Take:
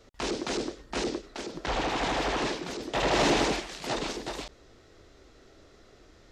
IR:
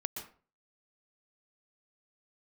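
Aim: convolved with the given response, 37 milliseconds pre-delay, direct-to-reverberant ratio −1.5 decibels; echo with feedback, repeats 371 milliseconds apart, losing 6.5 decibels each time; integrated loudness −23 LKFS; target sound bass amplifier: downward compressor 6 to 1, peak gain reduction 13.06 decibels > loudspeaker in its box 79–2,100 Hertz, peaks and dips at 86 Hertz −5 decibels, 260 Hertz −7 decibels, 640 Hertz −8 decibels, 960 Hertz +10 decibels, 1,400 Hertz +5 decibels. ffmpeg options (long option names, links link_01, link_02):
-filter_complex "[0:a]aecho=1:1:371|742|1113|1484|1855|2226:0.473|0.222|0.105|0.0491|0.0231|0.0109,asplit=2[link_01][link_02];[1:a]atrim=start_sample=2205,adelay=37[link_03];[link_02][link_03]afir=irnorm=-1:irlink=0,volume=1dB[link_04];[link_01][link_04]amix=inputs=2:normalize=0,acompressor=threshold=-29dB:ratio=6,highpass=frequency=79:width=0.5412,highpass=frequency=79:width=1.3066,equalizer=frequency=86:width_type=q:width=4:gain=-5,equalizer=frequency=260:width_type=q:width=4:gain=-7,equalizer=frequency=640:width_type=q:width=4:gain=-8,equalizer=frequency=960:width_type=q:width=4:gain=10,equalizer=frequency=1400:width_type=q:width=4:gain=5,lowpass=frequency=2100:width=0.5412,lowpass=frequency=2100:width=1.3066,volume=9.5dB"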